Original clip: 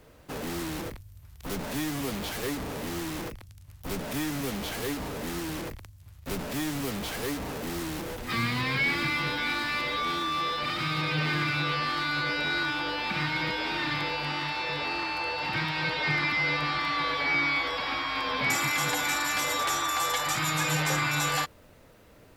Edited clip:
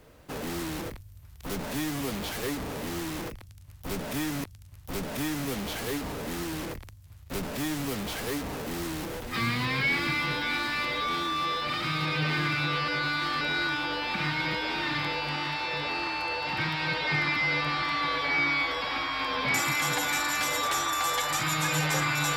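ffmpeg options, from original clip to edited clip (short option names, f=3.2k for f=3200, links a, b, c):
-filter_complex "[0:a]asplit=4[a][b][c][d];[a]atrim=end=4.442[e];[b]atrim=start=3.398:end=11.842[f];[c]atrim=start=11.838:end=12.372,asetpts=PTS-STARTPTS,areverse[g];[d]atrim=start=12.368[h];[e][f]acrossfade=d=0.004:c1=hsin:c2=hsin[i];[i][g]acrossfade=d=0.004:c1=hsin:c2=hsin[j];[j][h]acrossfade=d=0.004:c1=hsin:c2=hsin"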